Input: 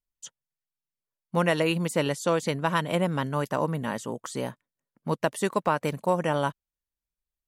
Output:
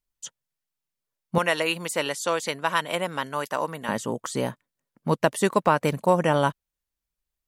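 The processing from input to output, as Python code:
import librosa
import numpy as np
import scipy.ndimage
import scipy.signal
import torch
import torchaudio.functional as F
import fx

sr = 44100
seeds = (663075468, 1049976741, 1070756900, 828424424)

y = fx.highpass(x, sr, hz=900.0, slope=6, at=(1.38, 3.89))
y = F.gain(torch.from_numpy(y), 4.5).numpy()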